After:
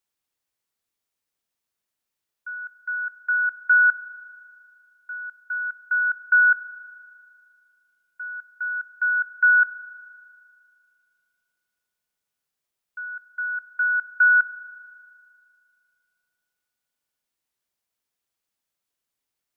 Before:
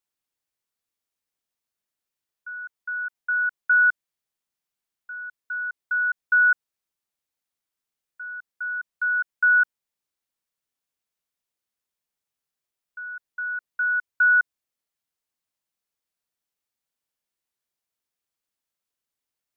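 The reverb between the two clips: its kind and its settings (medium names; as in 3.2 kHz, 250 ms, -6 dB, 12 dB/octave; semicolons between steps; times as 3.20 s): spring tank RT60 2.4 s, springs 36 ms, chirp 25 ms, DRR 13.5 dB; trim +2.5 dB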